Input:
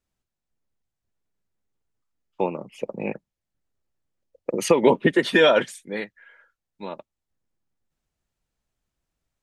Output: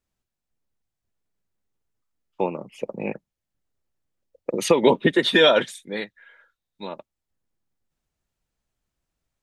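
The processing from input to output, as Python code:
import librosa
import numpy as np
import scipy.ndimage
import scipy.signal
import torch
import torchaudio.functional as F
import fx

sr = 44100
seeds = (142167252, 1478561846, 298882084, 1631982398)

y = fx.peak_eq(x, sr, hz=3700.0, db=12.0, octaves=0.22, at=(4.51, 6.87))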